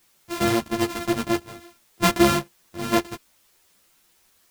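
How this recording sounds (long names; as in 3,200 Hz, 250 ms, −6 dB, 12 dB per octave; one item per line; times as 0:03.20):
a buzz of ramps at a fixed pitch in blocks of 128 samples
chopped level 0.57 Hz, depth 65%, duty 80%
a quantiser's noise floor 10 bits, dither triangular
a shimmering, thickened sound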